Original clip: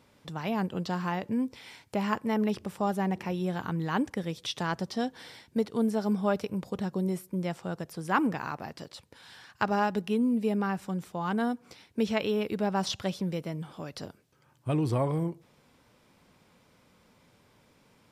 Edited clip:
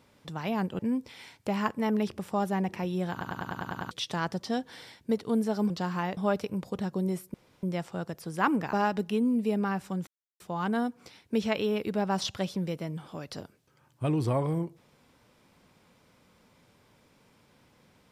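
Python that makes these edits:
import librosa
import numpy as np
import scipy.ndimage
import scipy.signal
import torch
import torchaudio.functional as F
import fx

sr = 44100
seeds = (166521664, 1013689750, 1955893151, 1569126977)

y = fx.edit(x, sr, fx.move(start_s=0.79, length_s=0.47, to_s=6.17),
    fx.stutter_over(start_s=3.58, slice_s=0.1, count=8),
    fx.insert_room_tone(at_s=7.34, length_s=0.29),
    fx.cut(start_s=8.44, length_s=1.27),
    fx.insert_silence(at_s=11.05, length_s=0.33), tone=tone)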